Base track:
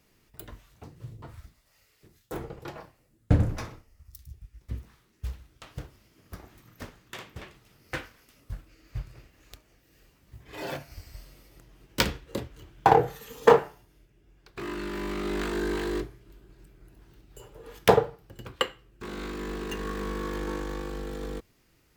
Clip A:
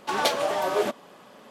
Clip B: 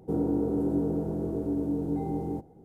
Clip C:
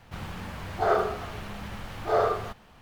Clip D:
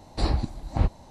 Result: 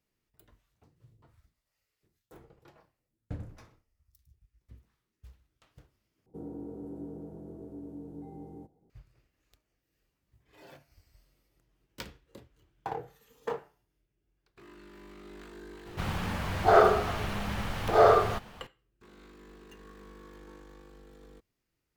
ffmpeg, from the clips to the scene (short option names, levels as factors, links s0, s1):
-filter_complex "[0:a]volume=0.126[s0];[3:a]acontrast=67[s1];[s0]asplit=2[s2][s3];[s2]atrim=end=6.264[s4];[2:a]atrim=end=2.64,asetpts=PTS-STARTPTS,volume=0.188[s5];[s3]atrim=start=8.896[s6];[s1]atrim=end=2.81,asetpts=PTS-STARTPTS,volume=0.794,afade=t=in:d=0.004:c=hsin,afade=t=out:st=2.806:d=0.004:c=hsin,adelay=15860[s7];[s4][s5]acrossfade=d=0.004:c1=hsin:c2=hsin[s8];[s8][s6]acrossfade=d=0.004:c1=hsin:c2=hsin[s9];[s9][s7]amix=inputs=2:normalize=0"